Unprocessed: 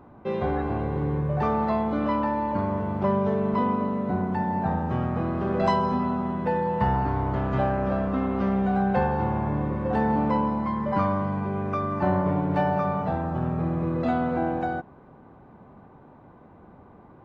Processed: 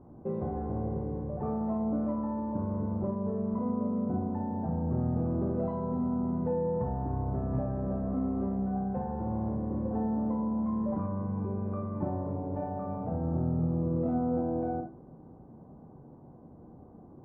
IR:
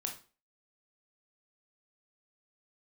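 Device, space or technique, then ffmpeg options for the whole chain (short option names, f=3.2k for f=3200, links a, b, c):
television next door: -filter_complex "[0:a]acompressor=threshold=-25dB:ratio=6,lowpass=540[a];[1:a]atrim=start_sample=2205[b];[a][b]afir=irnorm=-1:irlink=0"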